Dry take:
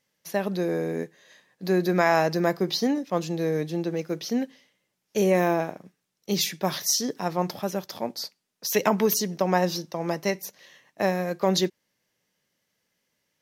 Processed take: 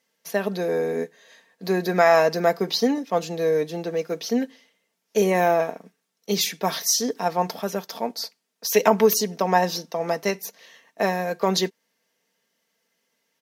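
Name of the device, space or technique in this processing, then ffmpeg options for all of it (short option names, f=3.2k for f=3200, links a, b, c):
filter by subtraction: -filter_complex "[0:a]aecho=1:1:4.4:0.53,asplit=2[a][b];[b]lowpass=470,volume=-1[c];[a][c]amix=inputs=2:normalize=0,volume=1.5dB"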